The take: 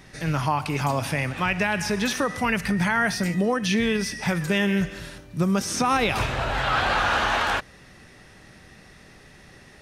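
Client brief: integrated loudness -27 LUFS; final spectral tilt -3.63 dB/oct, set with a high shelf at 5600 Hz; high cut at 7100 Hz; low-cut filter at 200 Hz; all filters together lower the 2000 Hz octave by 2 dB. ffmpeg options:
-af "highpass=200,lowpass=7.1k,equalizer=f=2k:t=o:g=-3.5,highshelf=f=5.6k:g=7,volume=-2dB"

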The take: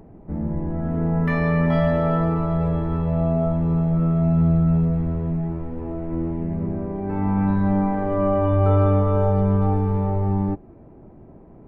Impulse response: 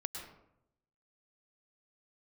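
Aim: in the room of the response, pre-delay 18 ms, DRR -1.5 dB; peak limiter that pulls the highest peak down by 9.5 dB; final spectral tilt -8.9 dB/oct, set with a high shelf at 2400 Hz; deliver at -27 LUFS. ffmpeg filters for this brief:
-filter_complex "[0:a]highshelf=f=2.4k:g=-6.5,alimiter=limit=-16.5dB:level=0:latency=1,asplit=2[a][b];[1:a]atrim=start_sample=2205,adelay=18[c];[b][c]afir=irnorm=-1:irlink=0,volume=1.5dB[d];[a][d]amix=inputs=2:normalize=0,volume=-10.5dB"

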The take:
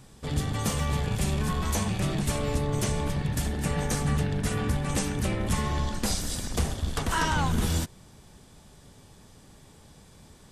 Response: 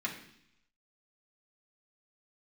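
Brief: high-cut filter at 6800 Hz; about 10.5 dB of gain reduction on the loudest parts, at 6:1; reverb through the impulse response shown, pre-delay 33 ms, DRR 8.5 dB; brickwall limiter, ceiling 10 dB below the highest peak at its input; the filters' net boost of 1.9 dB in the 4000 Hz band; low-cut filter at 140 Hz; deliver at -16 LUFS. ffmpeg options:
-filter_complex "[0:a]highpass=140,lowpass=6.8k,equalizer=f=4k:t=o:g=3,acompressor=threshold=-36dB:ratio=6,alimiter=level_in=7dB:limit=-24dB:level=0:latency=1,volume=-7dB,asplit=2[a][b];[1:a]atrim=start_sample=2205,adelay=33[c];[b][c]afir=irnorm=-1:irlink=0,volume=-13dB[d];[a][d]amix=inputs=2:normalize=0,volume=24.5dB"

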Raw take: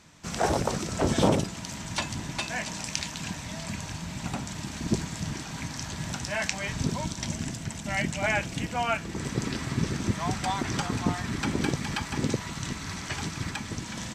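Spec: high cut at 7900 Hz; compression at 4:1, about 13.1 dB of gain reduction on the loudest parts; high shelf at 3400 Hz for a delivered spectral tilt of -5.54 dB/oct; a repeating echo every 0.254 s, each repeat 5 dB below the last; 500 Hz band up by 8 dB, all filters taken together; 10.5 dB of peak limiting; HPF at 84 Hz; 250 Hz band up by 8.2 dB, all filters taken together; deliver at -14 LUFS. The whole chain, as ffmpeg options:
-af "highpass=84,lowpass=7.9k,equalizer=f=250:t=o:g=8.5,equalizer=f=500:t=o:g=8,highshelf=f=3.4k:g=-3.5,acompressor=threshold=-27dB:ratio=4,alimiter=limit=-21dB:level=0:latency=1,aecho=1:1:254|508|762|1016|1270|1524|1778:0.562|0.315|0.176|0.0988|0.0553|0.031|0.0173,volume=17dB"

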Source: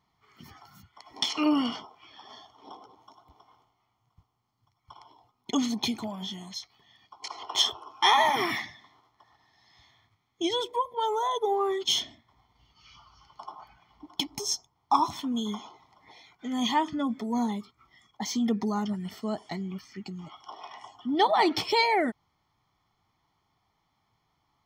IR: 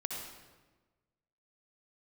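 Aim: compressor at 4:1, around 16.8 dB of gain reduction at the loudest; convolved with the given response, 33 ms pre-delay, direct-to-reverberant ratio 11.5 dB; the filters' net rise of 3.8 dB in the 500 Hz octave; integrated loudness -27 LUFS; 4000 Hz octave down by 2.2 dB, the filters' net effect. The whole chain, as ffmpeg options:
-filter_complex "[0:a]equalizer=f=500:t=o:g=5,equalizer=f=4k:t=o:g=-3,acompressor=threshold=-38dB:ratio=4,asplit=2[a][b];[1:a]atrim=start_sample=2205,adelay=33[c];[b][c]afir=irnorm=-1:irlink=0,volume=-13dB[d];[a][d]amix=inputs=2:normalize=0,volume=13.5dB"

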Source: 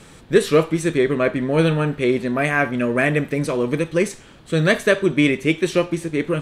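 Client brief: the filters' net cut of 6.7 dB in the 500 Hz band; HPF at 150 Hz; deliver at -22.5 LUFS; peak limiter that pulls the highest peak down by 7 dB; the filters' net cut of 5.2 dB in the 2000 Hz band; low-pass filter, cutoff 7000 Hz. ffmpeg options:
-af "highpass=150,lowpass=7k,equalizer=f=500:t=o:g=-8.5,equalizer=f=2k:t=o:g=-6,volume=3.5dB,alimiter=limit=-11dB:level=0:latency=1"

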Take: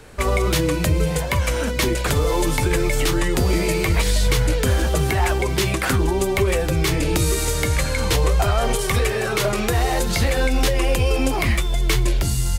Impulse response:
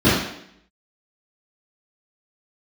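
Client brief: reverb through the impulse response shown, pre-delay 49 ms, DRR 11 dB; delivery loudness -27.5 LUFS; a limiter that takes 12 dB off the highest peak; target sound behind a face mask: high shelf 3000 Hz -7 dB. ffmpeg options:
-filter_complex "[0:a]alimiter=limit=-20.5dB:level=0:latency=1,asplit=2[a][b];[1:a]atrim=start_sample=2205,adelay=49[c];[b][c]afir=irnorm=-1:irlink=0,volume=-34.5dB[d];[a][d]amix=inputs=2:normalize=0,highshelf=f=3k:g=-7,volume=1dB"

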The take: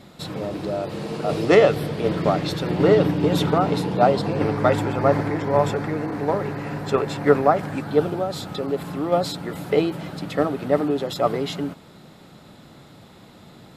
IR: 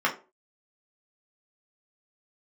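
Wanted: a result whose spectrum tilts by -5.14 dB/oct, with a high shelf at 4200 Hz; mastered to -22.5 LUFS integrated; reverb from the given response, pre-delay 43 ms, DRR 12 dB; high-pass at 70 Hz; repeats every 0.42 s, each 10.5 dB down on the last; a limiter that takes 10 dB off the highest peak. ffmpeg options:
-filter_complex "[0:a]highpass=70,highshelf=f=4.2k:g=5,alimiter=limit=-12dB:level=0:latency=1,aecho=1:1:420|840|1260:0.299|0.0896|0.0269,asplit=2[a][b];[1:a]atrim=start_sample=2205,adelay=43[c];[b][c]afir=irnorm=-1:irlink=0,volume=-25.5dB[d];[a][d]amix=inputs=2:normalize=0,volume=1.5dB"

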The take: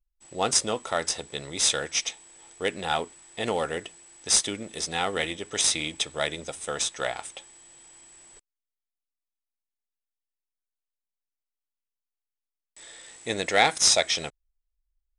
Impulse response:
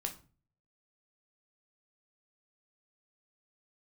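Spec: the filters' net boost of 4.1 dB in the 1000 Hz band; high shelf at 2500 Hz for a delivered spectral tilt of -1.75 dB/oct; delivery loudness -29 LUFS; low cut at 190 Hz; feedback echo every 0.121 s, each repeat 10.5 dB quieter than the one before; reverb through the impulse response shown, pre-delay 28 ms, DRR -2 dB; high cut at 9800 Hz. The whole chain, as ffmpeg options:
-filter_complex "[0:a]highpass=190,lowpass=9.8k,equalizer=f=1k:t=o:g=7.5,highshelf=f=2.5k:g=-9,aecho=1:1:121|242|363:0.299|0.0896|0.0269,asplit=2[a][b];[1:a]atrim=start_sample=2205,adelay=28[c];[b][c]afir=irnorm=-1:irlink=0,volume=2dB[d];[a][d]amix=inputs=2:normalize=0,volume=-5dB"

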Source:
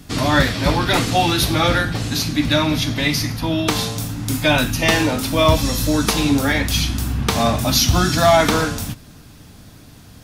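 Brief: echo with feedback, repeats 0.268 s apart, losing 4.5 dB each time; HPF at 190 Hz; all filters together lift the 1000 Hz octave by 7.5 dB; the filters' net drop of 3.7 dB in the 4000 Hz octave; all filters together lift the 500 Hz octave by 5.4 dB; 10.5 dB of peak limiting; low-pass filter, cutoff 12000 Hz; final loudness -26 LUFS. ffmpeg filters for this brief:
-af "highpass=190,lowpass=12k,equalizer=f=500:t=o:g=3.5,equalizer=f=1k:t=o:g=9,equalizer=f=4k:t=o:g=-5,alimiter=limit=-8dB:level=0:latency=1,aecho=1:1:268|536|804|1072|1340|1608|1876|2144|2412:0.596|0.357|0.214|0.129|0.0772|0.0463|0.0278|0.0167|0.01,volume=-9dB"

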